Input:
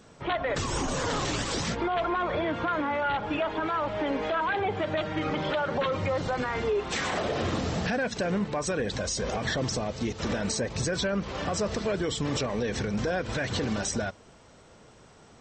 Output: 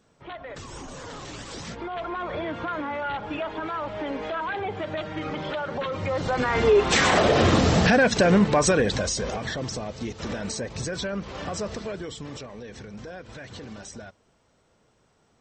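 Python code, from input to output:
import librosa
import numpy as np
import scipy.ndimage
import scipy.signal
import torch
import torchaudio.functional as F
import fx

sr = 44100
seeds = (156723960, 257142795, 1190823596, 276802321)

y = fx.gain(x, sr, db=fx.line((1.19, -10.0), (2.38, -2.0), (5.9, -2.0), (6.76, 10.0), (8.65, 10.0), (9.5, -2.0), (11.63, -2.0), (12.54, -11.0)))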